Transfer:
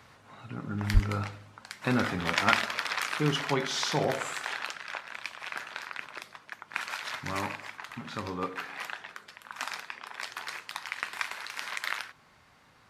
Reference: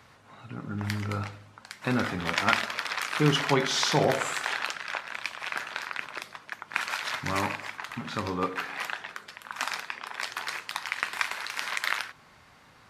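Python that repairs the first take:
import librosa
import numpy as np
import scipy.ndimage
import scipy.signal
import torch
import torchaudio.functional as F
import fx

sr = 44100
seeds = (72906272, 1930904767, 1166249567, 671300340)

y = fx.highpass(x, sr, hz=140.0, slope=24, at=(0.93, 1.05), fade=0.02)
y = fx.gain(y, sr, db=fx.steps((0.0, 0.0), (3.15, 4.5)))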